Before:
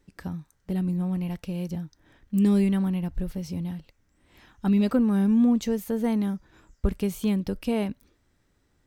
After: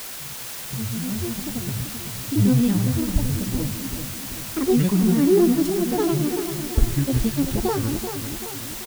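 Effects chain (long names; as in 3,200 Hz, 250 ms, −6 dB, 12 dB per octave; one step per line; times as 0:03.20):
fade in at the beginning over 1.80 s
low-shelf EQ 170 Hz +9.5 dB
granular cloud 121 ms, pitch spread up and down by 12 semitones
bit-depth reduction 6 bits, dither triangular
on a send: repeating echo 386 ms, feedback 54%, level −8.5 dB
on the sum: level +1.5 dB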